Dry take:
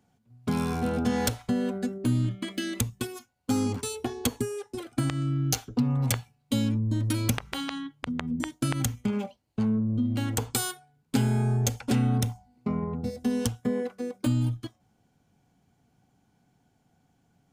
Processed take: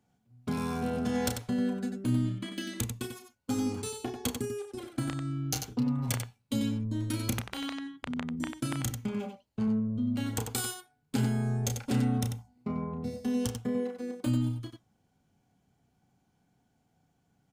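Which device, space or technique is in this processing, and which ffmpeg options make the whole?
slapback doubling: -filter_complex "[0:a]asplit=3[s0][s1][s2];[s1]adelay=32,volume=0.422[s3];[s2]adelay=93,volume=0.447[s4];[s0][s3][s4]amix=inputs=3:normalize=0,volume=0.531"

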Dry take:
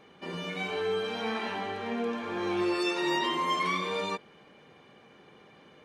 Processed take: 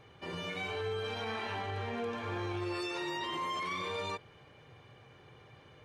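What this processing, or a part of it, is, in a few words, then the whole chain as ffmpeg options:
car stereo with a boomy subwoofer: -af "lowshelf=f=150:t=q:w=3:g=9,alimiter=level_in=1.41:limit=0.0631:level=0:latency=1:release=21,volume=0.708,volume=0.794"

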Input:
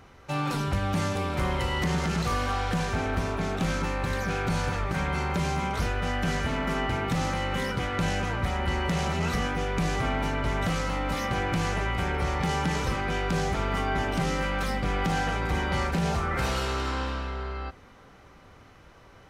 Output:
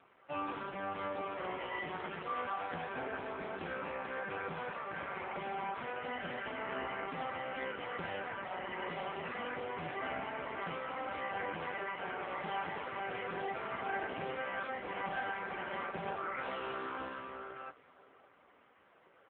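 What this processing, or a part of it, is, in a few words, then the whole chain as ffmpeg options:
satellite phone: -filter_complex "[0:a]asettb=1/sr,asplit=3[s0][s1][s2];[s0]atrim=end=0.934[s3];[s1]atrim=start=0.93:end=2.43,asetpts=PTS-STARTPTS,afade=t=in:d=0.004:c=qsin,afade=t=out:st=1.496:d=0.004:c=qsin,adynamicequalizer=threshold=0.0112:dfrequency=160:dqfactor=2.2:tfrequency=160:tqfactor=2.2:attack=5:release=100:ratio=0.375:range=1.5:mode=cutabove:tftype=bell[s4];[s2]atrim=start=2.426[s5];[s3][s4]acrossfade=d=0.004:c1=hsin:c2=qsin[s6];[s6][s5]acrossfade=d=0.004:c1=qsin:c2=hsin,highpass=320,lowpass=3300,aecho=1:1:547:0.106,volume=0.562" -ar 8000 -c:a libopencore_amrnb -b:a 5150

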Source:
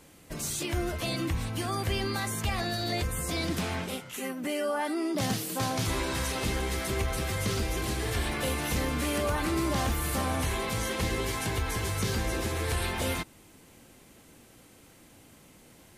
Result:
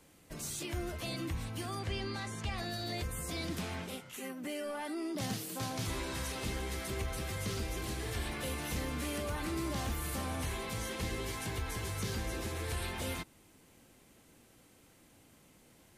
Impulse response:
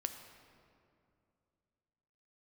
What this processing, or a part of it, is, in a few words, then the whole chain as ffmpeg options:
one-band saturation: -filter_complex "[0:a]asettb=1/sr,asplit=3[s0][s1][s2];[s0]atrim=end=1.794[s3];[s1]atrim=start=1.79:end=2.58,asetpts=PTS-STARTPTS,afade=t=in:d=0.004:c=qsin,afade=t=out:st=0.786:d=0.004:c=qsin,lowpass=6900[s4];[s2]atrim=start=2.576[s5];[s3][s4]acrossfade=d=0.004:c1=hsin:c2=qsin[s6];[s6][s5]acrossfade=d=0.004:c1=qsin:c2=hsin,acrossover=split=360|2100[s7][s8][s9];[s8]asoftclip=type=tanh:threshold=0.0299[s10];[s7][s10][s9]amix=inputs=3:normalize=0,volume=0.447"

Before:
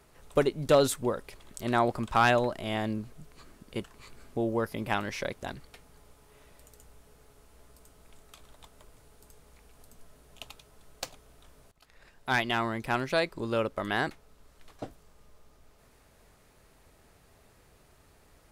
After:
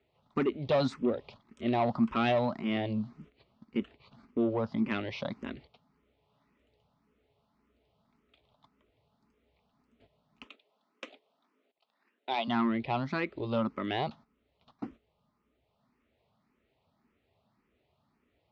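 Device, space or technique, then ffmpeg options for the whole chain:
barber-pole phaser into a guitar amplifier: -filter_complex "[0:a]agate=range=0.251:threshold=0.00398:ratio=16:detection=peak,asettb=1/sr,asplit=3[s0][s1][s2];[s0]atrim=end=10.444[s3];[s1]atrim=start=10.44:end=12.48,asetpts=PTS-STARTPTS,afade=t=in:d=0.004:c=qsin,afade=t=out:st=2.036:d=0.004:c=qsin,highpass=f=260:w=0.5412,highpass=f=260:w=1.3066[s4];[s2]atrim=start=12.476[s5];[s3][s4]acrossfade=d=0.004:c1=hsin:c2=qsin[s6];[s6][s5]acrossfade=d=0.004:c1=qsin:c2=hsin,asplit=2[s7][s8];[s8]afreqshift=1.8[s9];[s7][s9]amix=inputs=2:normalize=1,asoftclip=type=tanh:threshold=0.0631,highpass=90,equalizer=f=230:t=q:w=4:g=8,equalizer=f=470:t=q:w=4:g=-3,equalizer=f=1600:t=q:w=4:g=-8,lowpass=f=3900:w=0.5412,lowpass=f=3900:w=1.3066,volume=1.41"

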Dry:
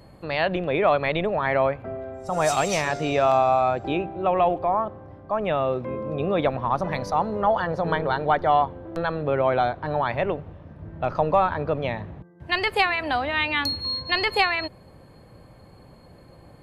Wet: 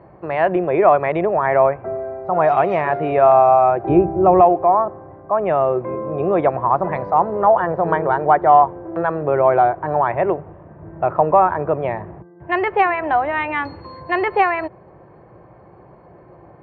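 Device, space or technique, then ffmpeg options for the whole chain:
bass cabinet: -filter_complex "[0:a]highpass=66,equalizer=f=86:t=q:w=4:g=-7,equalizer=f=250:t=q:w=4:g=-8,equalizer=f=360:t=q:w=4:g=9,equalizer=f=700:t=q:w=4:g=6,equalizer=f=1000:t=q:w=4:g=5,lowpass=f=2100:w=0.5412,lowpass=f=2100:w=1.3066,asettb=1/sr,asplit=3[s0][s1][s2];[s0]atrim=end=3.894[s3];[s1]atrim=start=3.89:end=4.41,asetpts=PTS-STARTPTS,afade=t=in:d=0.004:c=qsin,afade=t=out:st=0.516:d=0.004:c=qsin,aemphasis=mode=reproduction:type=riaa[s4];[s2]atrim=start=4.406[s5];[s3][s4]acrossfade=d=0.004:c1=hsin:c2=qsin[s6];[s6][s5]acrossfade=d=0.004:c1=qsin:c2=hsin,volume=1.41"

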